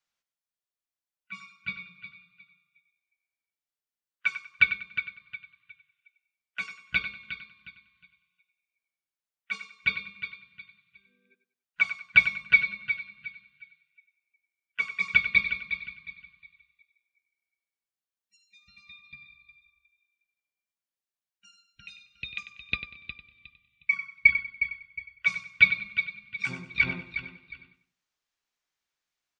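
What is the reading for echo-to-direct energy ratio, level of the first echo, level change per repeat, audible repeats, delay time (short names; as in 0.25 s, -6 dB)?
-11.0 dB, -11.5 dB, -10.5 dB, 3, 96 ms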